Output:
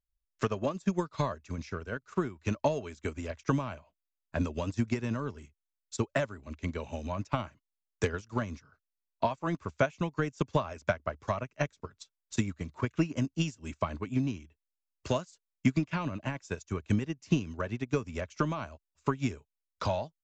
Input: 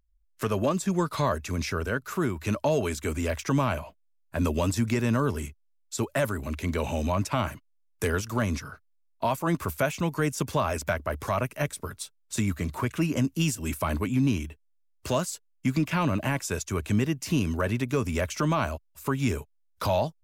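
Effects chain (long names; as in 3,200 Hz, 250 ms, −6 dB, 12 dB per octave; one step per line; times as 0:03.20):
transient designer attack +8 dB, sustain −2 dB
downsampling to 16,000 Hz
expander for the loud parts 1.5 to 1, over −42 dBFS
level −5.5 dB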